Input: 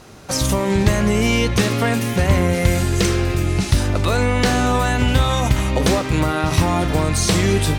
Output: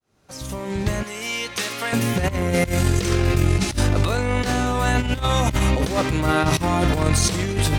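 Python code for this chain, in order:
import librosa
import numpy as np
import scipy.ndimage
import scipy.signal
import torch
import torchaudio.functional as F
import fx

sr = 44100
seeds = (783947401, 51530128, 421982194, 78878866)

y = fx.fade_in_head(x, sr, length_s=2.59)
y = fx.highpass(y, sr, hz=1400.0, slope=6, at=(1.03, 1.93))
y = fx.over_compress(y, sr, threshold_db=-19.0, ratio=-0.5)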